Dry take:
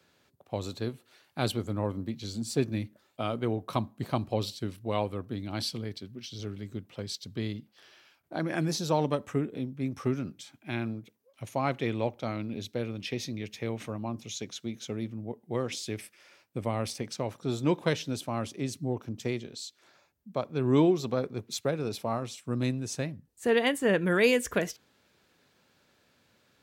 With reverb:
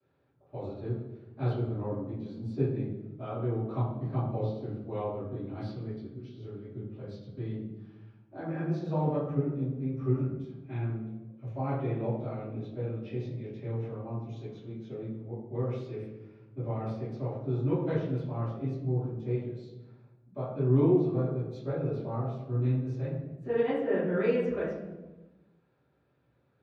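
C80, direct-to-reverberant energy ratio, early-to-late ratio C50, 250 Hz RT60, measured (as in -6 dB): 4.0 dB, -18.0 dB, 1.0 dB, 1.5 s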